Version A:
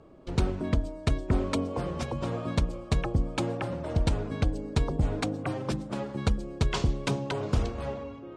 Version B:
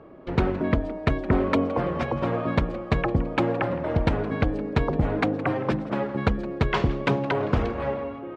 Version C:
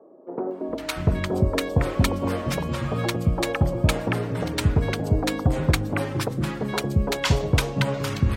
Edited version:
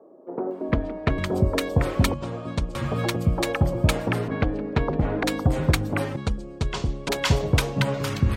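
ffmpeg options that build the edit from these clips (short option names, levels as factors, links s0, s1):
-filter_complex "[1:a]asplit=2[s0][s1];[0:a]asplit=2[s2][s3];[2:a]asplit=5[s4][s5][s6][s7][s8];[s4]atrim=end=0.722[s9];[s0]atrim=start=0.718:end=1.182[s10];[s5]atrim=start=1.178:end=2.142[s11];[s2]atrim=start=2.138:end=2.752[s12];[s6]atrim=start=2.748:end=4.282[s13];[s1]atrim=start=4.278:end=5.232[s14];[s7]atrim=start=5.228:end=6.162[s15];[s3]atrim=start=6.158:end=7.092[s16];[s8]atrim=start=7.088[s17];[s9][s10]acrossfade=d=0.004:c1=hsin:c2=hsin[s18];[s18][s11]acrossfade=d=0.004:c1=hsin:c2=hsin[s19];[s19][s12]acrossfade=d=0.004:c1=hsin:c2=hsin[s20];[s20][s13]acrossfade=d=0.004:c1=hsin:c2=hsin[s21];[s21][s14]acrossfade=d=0.004:c1=hsin:c2=hsin[s22];[s22][s15]acrossfade=d=0.004:c1=hsin:c2=hsin[s23];[s23][s16]acrossfade=d=0.004:c1=hsin:c2=hsin[s24];[s24][s17]acrossfade=d=0.004:c1=hsin:c2=hsin"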